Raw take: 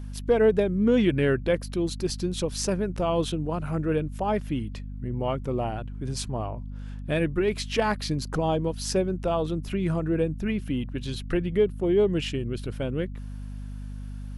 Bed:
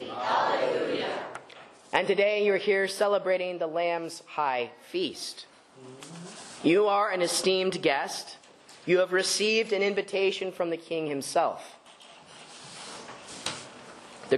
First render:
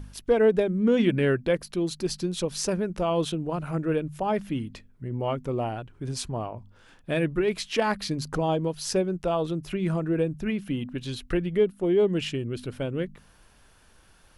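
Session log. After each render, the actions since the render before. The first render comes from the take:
hum removal 50 Hz, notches 5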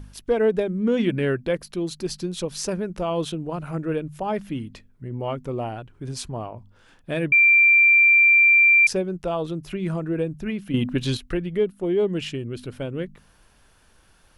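0:07.32–0:08.87: beep over 2,360 Hz −11.5 dBFS
0:10.74–0:11.17: clip gain +9 dB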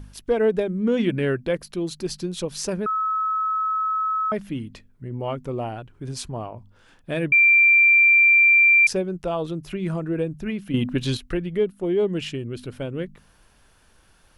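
0:02.86–0:04.32: beep over 1,290 Hz −20.5 dBFS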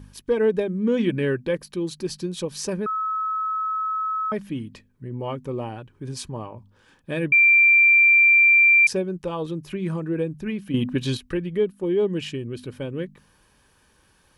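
notch comb filter 690 Hz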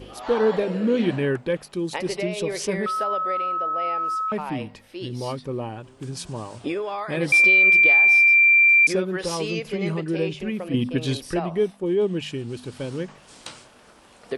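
mix in bed −5.5 dB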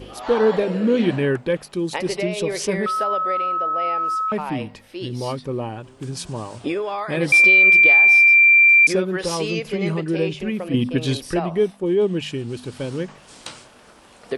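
level +3 dB

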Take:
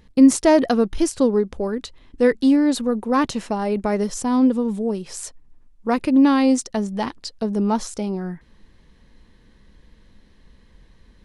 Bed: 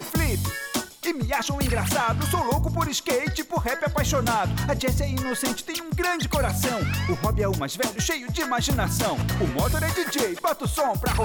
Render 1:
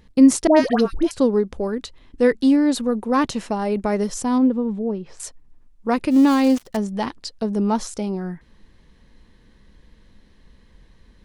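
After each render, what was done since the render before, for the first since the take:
0:00.47–0:01.11: all-pass dispersion highs, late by 97 ms, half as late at 970 Hz
0:04.38–0:05.20: head-to-tape spacing loss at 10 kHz 29 dB
0:06.10–0:06.77: gap after every zero crossing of 0.1 ms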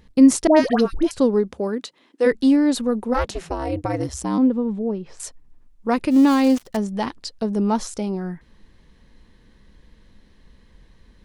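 0:01.50–0:02.25: high-pass filter 81 Hz → 340 Hz 24 dB per octave
0:03.13–0:04.37: ring modulation 260 Hz → 50 Hz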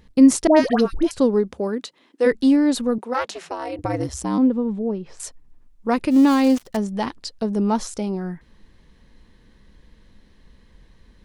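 0:02.98–0:03.79: meter weighting curve A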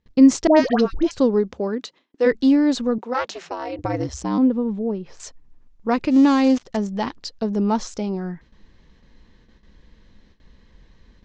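Butterworth low-pass 7,100 Hz 48 dB per octave
noise gate with hold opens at −43 dBFS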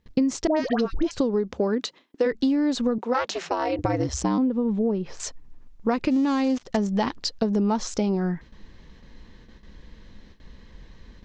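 in parallel at −2.5 dB: brickwall limiter −11.5 dBFS, peak gain reduction 8 dB
on the sum: downward compressor 16 to 1, threshold −19 dBFS, peak gain reduction 15.5 dB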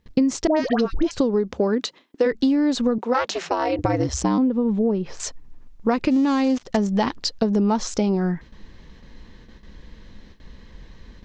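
level +3 dB

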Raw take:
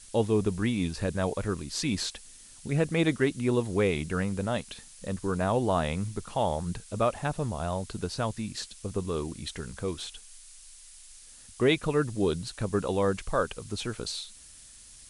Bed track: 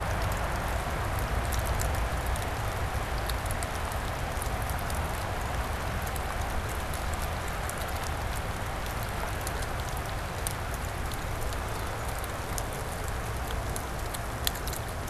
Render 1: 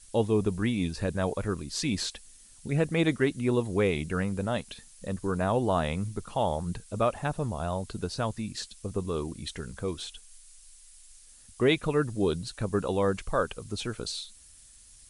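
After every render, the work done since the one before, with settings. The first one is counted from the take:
broadband denoise 6 dB, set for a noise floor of −51 dBFS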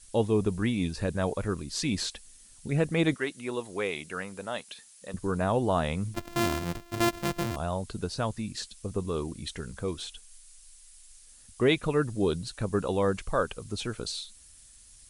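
0:03.14–0:05.14: high-pass filter 750 Hz 6 dB per octave
0:06.14–0:07.56: samples sorted by size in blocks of 128 samples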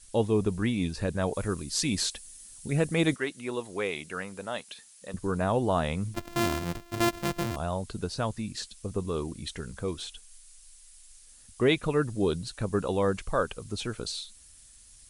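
0:01.33–0:03.16: high-shelf EQ 7,200 Hz +10.5 dB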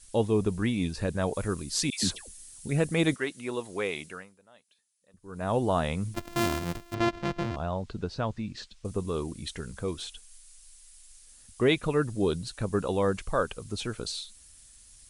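0:01.90–0:02.53: all-pass dispersion lows, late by 130 ms, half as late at 1,100 Hz
0:04.04–0:05.54: duck −23 dB, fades 0.38 s quadratic
0:06.94–0:08.85: high-frequency loss of the air 140 metres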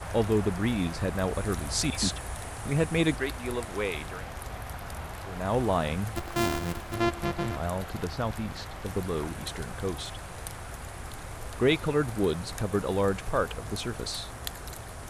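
mix in bed track −7 dB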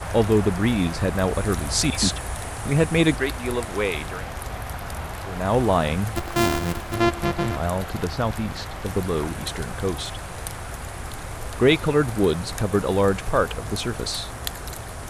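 level +6.5 dB

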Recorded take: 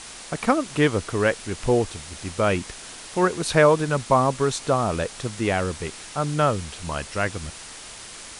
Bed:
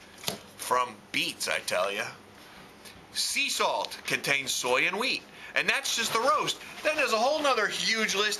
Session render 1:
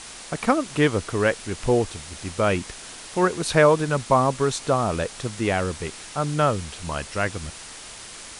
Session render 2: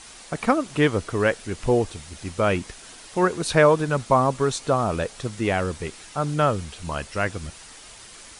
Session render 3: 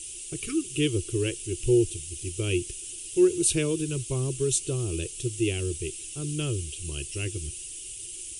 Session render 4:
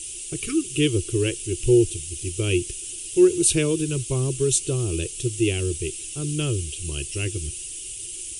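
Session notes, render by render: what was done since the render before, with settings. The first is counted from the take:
no processing that can be heard
broadband denoise 6 dB, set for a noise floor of −40 dBFS
0:00.43–0:00.81: time-frequency box erased 460–1,100 Hz; drawn EQ curve 130 Hz 0 dB, 230 Hz −22 dB, 350 Hz +6 dB, 590 Hz −24 dB, 900 Hz −29 dB, 1,300 Hz −25 dB, 1,900 Hz −20 dB, 2,800 Hz +4 dB, 4,200 Hz −7 dB, 8,500 Hz +10 dB
level +4.5 dB

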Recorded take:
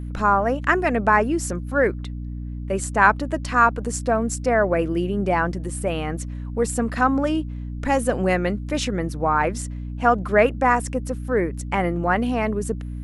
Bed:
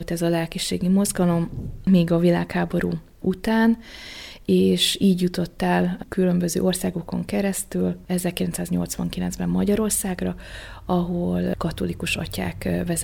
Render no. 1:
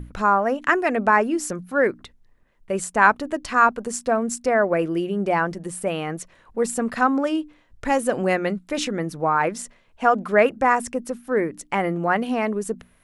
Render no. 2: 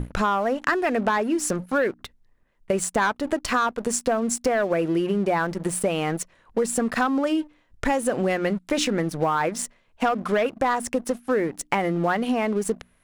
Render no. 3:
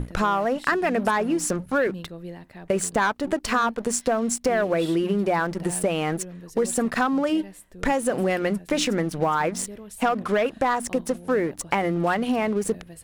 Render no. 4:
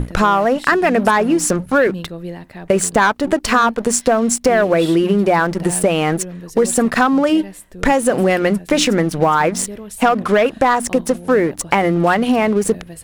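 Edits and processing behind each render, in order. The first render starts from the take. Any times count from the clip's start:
mains-hum notches 60/120/180/240/300 Hz
leveller curve on the samples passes 2; downward compressor, threshold −20 dBFS, peak gain reduction 12.5 dB
mix in bed −19.5 dB
level +8.5 dB; brickwall limiter −1 dBFS, peak gain reduction 1.5 dB

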